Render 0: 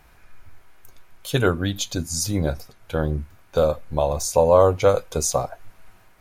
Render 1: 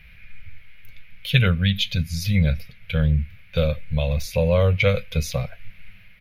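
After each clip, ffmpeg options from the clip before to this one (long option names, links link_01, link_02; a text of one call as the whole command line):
ffmpeg -i in.wav -af "firequalizer=gain_entry='entry(200,0);entry(300,-28);entry(500,-10);entry(820,-24);entry(2200,8);entry(7800,-28);entry(11000,-11)':delay=0.05:min_phase=1,volume=6.5dB" out.wav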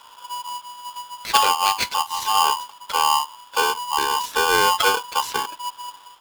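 ffmpeg -i in.wav -af "aeval=exprs='val(0)*sgn(sin(2*PI*980*n/s))':channel_layout=same" out.wav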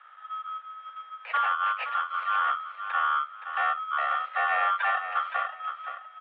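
ffmpeg -i in.wav -filter_complex "[0:a]asoftclip=type=hard:threshold=-17.5dB,asplit=2[link_01][link_02];[link_02]aecho=0:1:520|1040|1560:0.335|0.077|0.0177[link_03];[link_01][link_03]amix=inputs=2:normalize=0,highpass=frequency=200:width_type=q:width=0.5412,highpass=frequency=200:width_type=q:width=1.307,lowpass=frequency=2300:width_type=q:width=0.5176,lowpass=frequency=2300:width_type=q:width=0.7071,lowpass=frequency=2300:width_type=q:width=1.932,afreqshift=300,volume=-4dB" out.wav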